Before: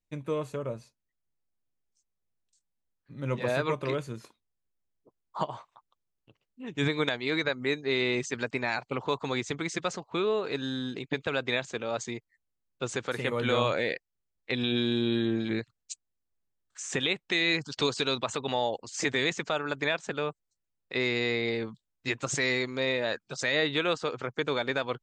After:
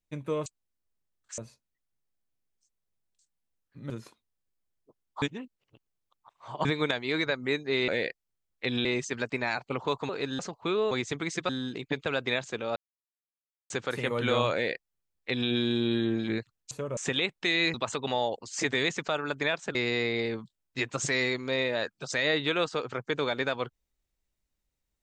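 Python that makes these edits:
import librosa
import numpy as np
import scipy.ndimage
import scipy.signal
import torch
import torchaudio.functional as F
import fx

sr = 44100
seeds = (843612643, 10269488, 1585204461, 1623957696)

y = fx.edit(x, sr, fx.swap(start_s=0.46, length_s=0.26, other_s=15.92, other_length_s=0.92),
    fx.cut(start_s=3.24, length_s=0.84),
    fx.reverse_span(start_s=5.4, length_s=1.43),
    fx.swap(start_s=9.3, length_s=0.58, other_s=10.4, other_length_s=0.3),
    fx.silence(start_s=11.97, length_s=0.94),
    fx.duplicate(start_s=13.74, length_s=0.97, to_s=8.06),
    fx.cut(start_s=17.61, length_s=0.54),
    fx.cut(start_s=20.16, length_s=0.88), tone=tone)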